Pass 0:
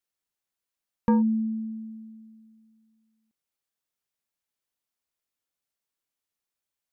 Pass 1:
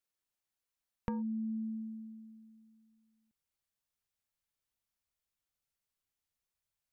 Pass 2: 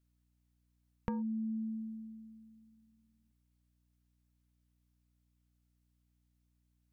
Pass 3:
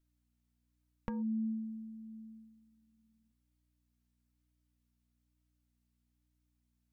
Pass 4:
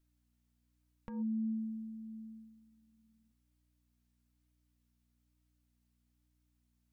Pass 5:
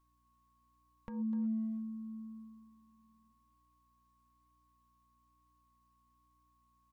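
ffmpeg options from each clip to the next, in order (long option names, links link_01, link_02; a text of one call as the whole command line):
ffmpeg -i in.wav -af "asubboost=boost=3.5:cutoff=150,acompressor=threshold=-31dB:ratio=10,volume=-3dB" out.wav
ffmpeg -i in.wav -af "aeval=exprs='val(0)+0.0002*(sin(2*PI*60*n/s)+sin(2*PI*2*60*n/s)/2+sin(2*PI*3*60*n/s)/3+sin(2*PI*4*60*n/s)/4+sin(2*PI*5*60*n/s)/5)':channel_layout=same" out.wav
ffmpeg -i in.wav -af "flanger=delay=3.1:depth=1.4:regen=49:speed=1.1:shape=sinusoidal,volume=2dB" out.wav
ffmpeg -i in.wav -af "alimiter=level_in=9.5dB:limit=-24dB:level=0:latency=1:release=170,volume=-9.5dB,volume=2dB" out.wav
ffmpeg -i in.wav -filter_complex "[0:a]aeval=exprs='val(0)+0.000178*sin(2*PI*1100*n/s)':channel_layout=same,asplit=2[link_01][link_02];[link_02]adelay=250,highpass=300,lowpass=3400,asoftclip=type=hard:threshold=-40dB,volume=-7dB[link_03];[link_01][link_03]amix=inputs=2:normalize=0" out.wav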